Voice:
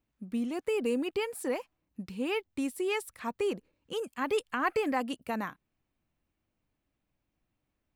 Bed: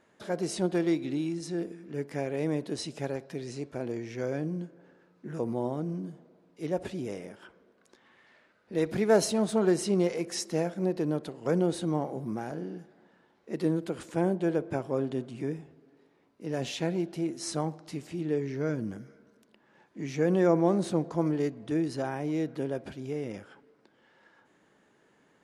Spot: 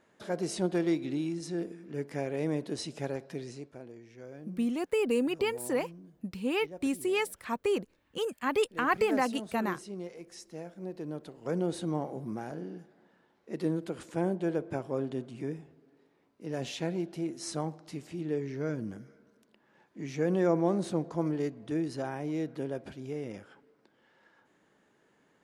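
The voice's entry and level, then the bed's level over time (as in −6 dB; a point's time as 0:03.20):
4.25 s, +2.0 dB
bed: 0:03.39 −1.5 dB
0:03.92 −14.5 dB
0:10.49 −14.5 dB
0:11.78 −3 dB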